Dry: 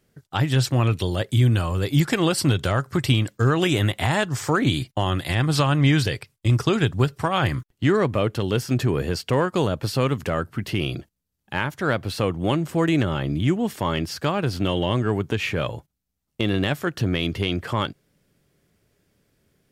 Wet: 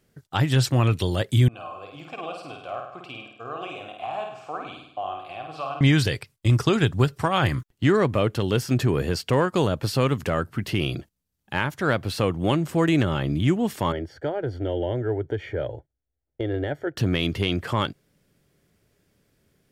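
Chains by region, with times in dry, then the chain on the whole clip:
0:01.48–0:05.81: formant filter a + flutter between parallel walls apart 8.8 metres, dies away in 0.7 s
0:13.92–0:16.97: Savitzky-Golay smoothing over 41 samples + parametric band 1,300 Hz +4 dB 0.66 octaves + phaser with its sweep stopped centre 470 Hz, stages 4
whole clip: no processing

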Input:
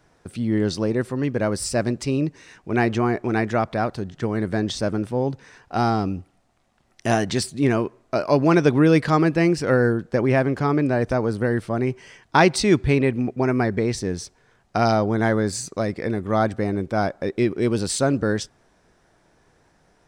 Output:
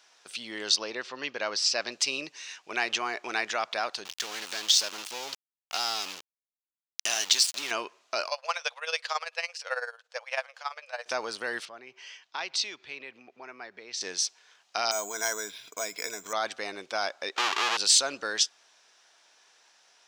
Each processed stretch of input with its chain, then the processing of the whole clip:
0:00.76–0:01.92: low-pass filter 5,700 Hz 24 dB per octave + one half of a high-frequency compander decoder only
0:04.05–0:07.71: high-shelf EQ 3,800 Hz +11.5 dB + downward compressor 5 to 1, threshold −25 dBFS + centre clipping without the shift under −33 dBFS
0:08.28–0:11.06: amplitude tremolo 18 Hz, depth 74% + linear-phase brick-wall high-pass 460 Hz + expander for the loud parts, over −35 dBFS
0:11.65–0:14.01: downward compressor 3 to 1, threshold −34 dBFS + high-frequency loss of the air 94 metres + multiband upward and downward expander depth 40%
0:14.91–0:16.33: EQ curve with evenly spaced ripples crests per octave 1.7, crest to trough 10 dB + downward compressor 2.5 to 1, threshold −24 dBFS + bad sample-rate conversion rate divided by 6×, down filtered, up hold
0:17.36–0:17.77: each half-wave held at its own peak + Bessel low-pass filter 8,100 Hz + parametric band 1,100 Hz +13.5 dB 2.8 octaves
whole clip: brickwall limiter −14 dBFS; high-pass filter 930 Hz 12 dB per octave; flat-topped bell 4,200 Hz +9.5 dB

